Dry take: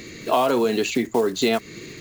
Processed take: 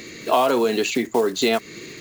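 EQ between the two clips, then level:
low-shelf EQ 150 Hz −10 dB
+2.0 dB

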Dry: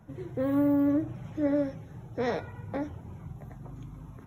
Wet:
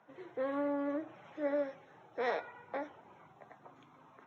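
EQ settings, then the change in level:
band-pass filter 600–3,500 Hz
0.0 dB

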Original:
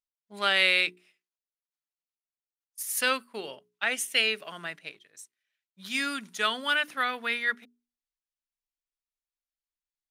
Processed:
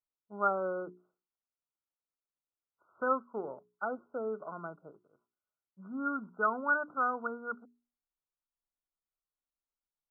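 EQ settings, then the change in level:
linear-phase brick-wall low-pass 1,500 Hz
0.0 dB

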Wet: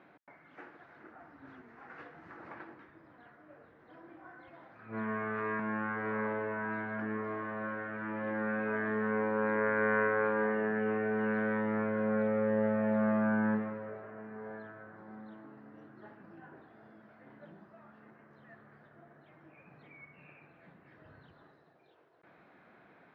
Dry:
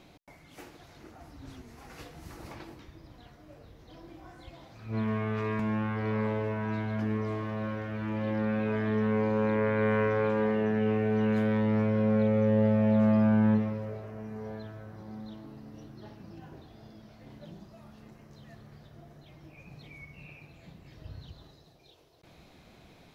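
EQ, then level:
high-pass filter 210 Hz 12 dB per octave
low-pass with resonance 1,600 Hz, resonance Q 2.9
−4.0 dB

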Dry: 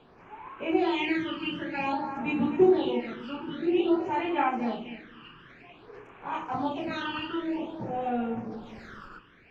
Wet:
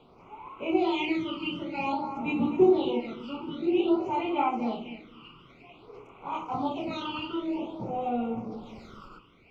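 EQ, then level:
Butterworth band-reject 1,700 Hz, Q 2
0.0 dB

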